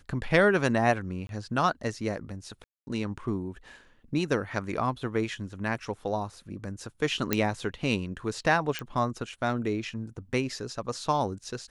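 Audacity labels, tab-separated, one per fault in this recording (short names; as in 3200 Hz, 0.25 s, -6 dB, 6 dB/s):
1.270000	1.290000	gap 22 ms
2.640000	2.870000	gap 0.23 s
7.330000	7.330000	pop -8 dBFS
8.790000	8.790000	pop -16 dBFS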